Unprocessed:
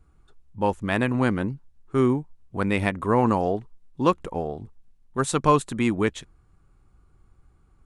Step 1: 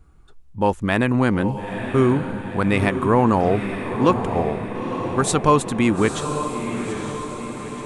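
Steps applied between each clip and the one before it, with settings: in parallel at 0 dB: peak limiter -16 dBFS, peak gain reduction 11 dB; on the sum: echo that smears into a reverb 926 ms, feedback 57%, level -7.5 dB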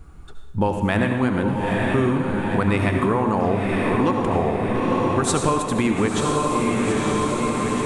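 compression, threshold -27 dBFS, peak gain reduction 15.5 dB; reverberation RT60 1.3 s, pre-delay 63 ms, DRR 4 dB; trim +8.5 dB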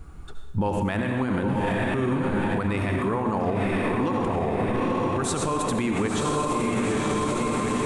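peak limiter -17.5 dBFS, peak gain reduction 11 dB; trim +1 dB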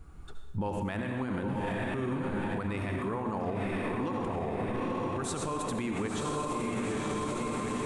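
recorder AGC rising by 8.4 dB/s; trim -8 dB

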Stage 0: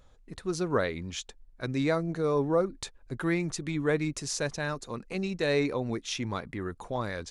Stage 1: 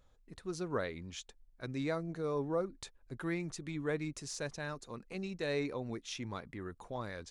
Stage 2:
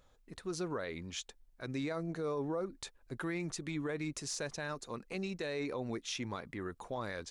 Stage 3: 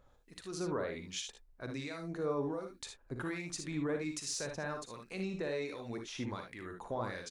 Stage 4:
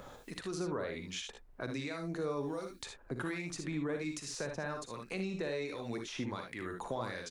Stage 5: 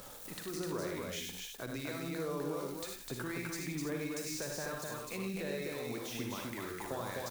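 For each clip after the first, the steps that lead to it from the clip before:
de-esser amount 60%; trim -8.5 dB
bass shelf 190 Hz -6 dB; peak limiter -33.5 dBFS, peak gain reduction 9.5 dB; trim +4.5 dB
harmonic tremolo 1.3 Hz, depth 70%, crossover 1.8 kHz; on a send: early reflections 42 ms -12 dB, 58 ms -7.5 dB, 75 ms -9 dB; on the sum: trim +1.5 dB
three bands compressed up and down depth 70%
zero-crossing glitches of -38.5 dBFS; loudspeakers at several distances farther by 34 m -7 dB, 87 m -3 dB; trim -3 dB

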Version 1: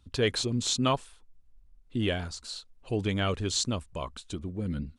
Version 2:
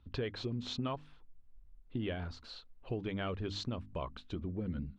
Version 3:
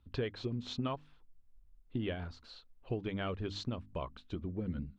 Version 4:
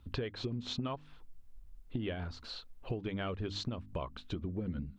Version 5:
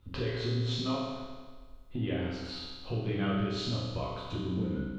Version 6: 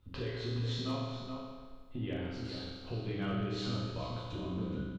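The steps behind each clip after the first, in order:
distance through air 300 m; hum notches 50/100/150/200/250/300 Hz; compression 6:1, threshold -34 dBFS, peak gain reduction 11.5 dB
upward expansion 1.5:1, over -45 dBFS; trim +2 dB
compression 3:1, threshold -46 dBFS, peak gain reduction 12 dB; trim +9 dB
reverberation RT60 1.5 s, pre-delay 7 ms, DRR -7.5 dB; trim -3 dB
hard clipper -22.5 dBFS, distortion -35 dB; echo from a far wall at 72 m, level -6 dB; trim -5 dB

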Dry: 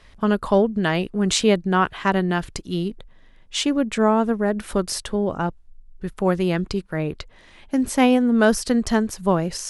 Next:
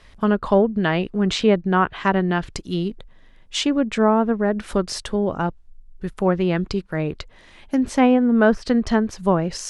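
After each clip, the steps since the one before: low-pass that closes with the level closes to 2.1 kHz, closed at -14 dBFS; trim +1 dB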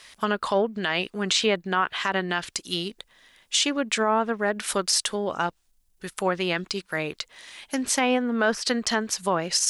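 tilt EQ +4.5 dB/octave; peak limiter -12 dBFS, peak gain reduction 11 dB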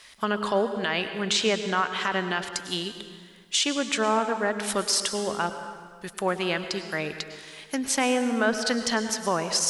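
reverberation RT60 1.7 s, pre-delay 93 ms, DRR 8.5 dB; trim -1.5 dB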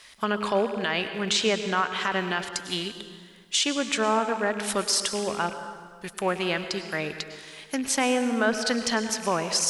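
rattle on loud lows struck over -42 dBFS, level -31 dBFS

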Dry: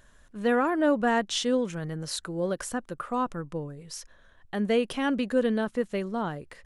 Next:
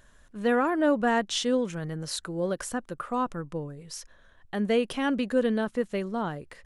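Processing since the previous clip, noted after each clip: no audible change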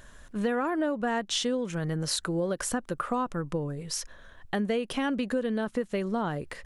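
compression 6:1, threshold -33 dBFS, peak gain reduction 14 dB; trim +7 dB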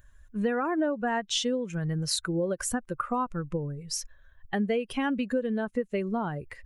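expander on every frequency bin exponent 1.5; trim +2.5 dB

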